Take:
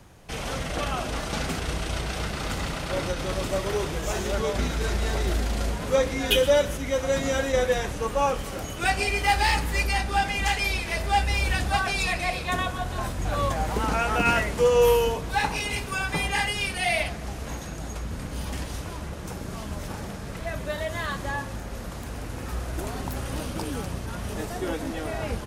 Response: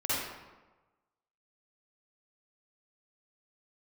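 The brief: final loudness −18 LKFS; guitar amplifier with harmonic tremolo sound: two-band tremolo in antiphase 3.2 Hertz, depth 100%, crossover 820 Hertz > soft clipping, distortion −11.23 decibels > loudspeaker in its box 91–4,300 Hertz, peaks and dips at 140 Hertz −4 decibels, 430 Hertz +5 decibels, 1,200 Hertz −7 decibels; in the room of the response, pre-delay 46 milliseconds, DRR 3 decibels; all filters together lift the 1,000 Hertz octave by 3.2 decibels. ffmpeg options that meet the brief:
-filter_complex "[0:a]equalizer=frequency=1000:width_type=o:gain=6,asplit=2[link_01][link_02];[1:a]atrim=start_sample=2205,adelay=46[link_03];[link_02][link_03]afir=irnorm=-1:irlink=0,volume=-11.5dB[link_04];[link_01][link_04]amix=inputs=2:normalize=0,acrossover=split=820[link_05][link_06];[link_05]aeval=exprs='val(0)*(1-1/2+1/2*cos(2*PI*3.2*n/s))':channel_layout=same[link_07];[link_06]aeval=exprs='val(0)*(1-1/2-1/2*cos(2*PI*3.2*n/s))':channel_layout=same[link_08];[link_07][link_08]amix=inputs=2:normalize=0,asoftclip=threshold=-23dB,highpass=91,equalizer=frequency=140:width_type=q:width=4:gain=-4,equalizer=frequency=430:width_type=q:width=4:gain=5,equalizer=frequency=1200:width_type=q:width=4:gain=-7,lowpass=frequency=4300:width=0.5412,lowpass=frequency=4300:width=1.3066,volume=13.5dB"

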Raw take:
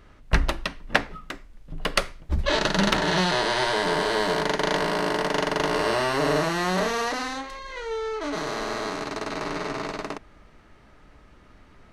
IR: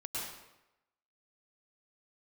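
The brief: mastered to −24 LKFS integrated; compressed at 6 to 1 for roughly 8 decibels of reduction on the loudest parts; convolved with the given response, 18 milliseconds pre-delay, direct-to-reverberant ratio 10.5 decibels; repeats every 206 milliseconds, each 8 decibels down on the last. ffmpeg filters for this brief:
-filter_complex "[0:a]acompressor=threshold=-25dB:ratio=6,aecho=1:1:206|412|618|824|1030:0.398|0.159|0.0637|0.0255|0.0102,asplit=2[link_01][link_02];[1:a]atrim=start_sample=2205,adelay=18[link_03];[link_02][link_03]afir=irnorm=-1:irlink=0,volume=-12.5dB[link_04];[link_01][link_04]amix=inputs=2:normalize=0,volume=5dB"

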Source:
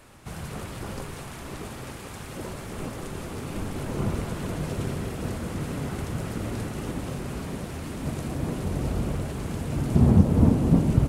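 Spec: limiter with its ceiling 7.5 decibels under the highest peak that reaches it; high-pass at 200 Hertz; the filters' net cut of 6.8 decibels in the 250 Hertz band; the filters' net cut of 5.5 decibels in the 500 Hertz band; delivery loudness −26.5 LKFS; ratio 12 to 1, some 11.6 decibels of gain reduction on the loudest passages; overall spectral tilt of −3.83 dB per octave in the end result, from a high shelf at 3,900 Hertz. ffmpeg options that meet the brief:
ffmpeg -i in.wav -af "highpass=200,equalizer=frequency=250:width_type=o:gain=-4.5,equalizer=frequency=500:width_type=o:gain=-5.5,highshelf=frequency=3900:gain=7,acompressor=threshold=-33dB:ratio=12,volume=13dB,alimiter=limit=-17dB:level=0:latency=1" out.wav

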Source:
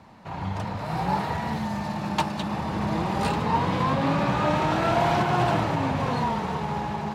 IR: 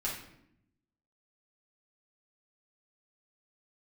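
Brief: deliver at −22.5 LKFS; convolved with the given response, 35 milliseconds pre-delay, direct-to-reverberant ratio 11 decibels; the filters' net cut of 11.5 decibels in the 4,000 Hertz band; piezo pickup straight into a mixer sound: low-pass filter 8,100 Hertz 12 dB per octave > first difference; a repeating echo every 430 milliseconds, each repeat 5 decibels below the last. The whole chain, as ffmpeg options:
-filter_complex "[0:a]equalizer=frequency=4000:width_type=o:gain=-7,aecho=1:1:430|860|1290|1720|2150|2580|3010:0.562|0.315|0.176|0.0988|0.0553|0.031|0.0173,asplit=2[link_01][link_02];[1:a]atrim=start_sample=2205,adelay=35[link_03];[link_02][link_03]afir=irnorm=-1:irlink=0,volume=-15dB[link_04];[link_01][link_04]amix=inputs=2:normalize=0,lowpass=8100,aderivative,volume=19.5dB"

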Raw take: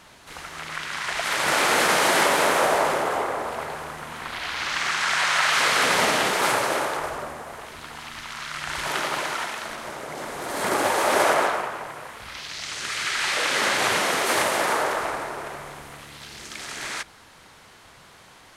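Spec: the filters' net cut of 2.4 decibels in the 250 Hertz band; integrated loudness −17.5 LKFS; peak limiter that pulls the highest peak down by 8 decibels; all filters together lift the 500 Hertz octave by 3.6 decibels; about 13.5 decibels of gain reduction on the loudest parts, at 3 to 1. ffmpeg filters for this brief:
ffmpeg -i in.wav -af "equalizer=frequency=250:width_type=o:gain=-7,equalizer=frequency=500:width_type=o:gain=6,acompressor=threshold=-33dB:ratio=3,volume=18dB,alimiter=limit=-8dB:level=0:latency=1" out.wav

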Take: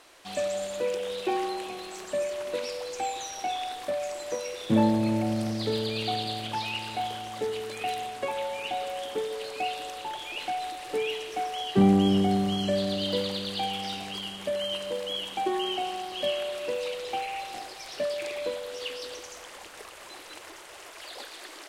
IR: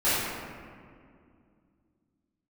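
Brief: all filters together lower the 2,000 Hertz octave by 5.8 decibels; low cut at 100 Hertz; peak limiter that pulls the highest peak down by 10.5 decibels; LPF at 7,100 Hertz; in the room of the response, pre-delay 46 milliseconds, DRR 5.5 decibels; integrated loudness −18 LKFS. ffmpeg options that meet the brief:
-filter_complex "[0:a]highpass=100,lowpass=7100,equalizer=frequency=2000:width_type=o:gain=-8,alimiter=limit=-21.5dB:level=0:latency=1,asplit=2[link_01][link_02];[1:a]atrim=start_sample=2205,adelay=46[link_03];[link_02][link_03]afir=irnorm=-1:irlink=0,volume=-21dB[link_04];[link_01][link_04]amix=inputs=2:normalize=0,volume=14dB"

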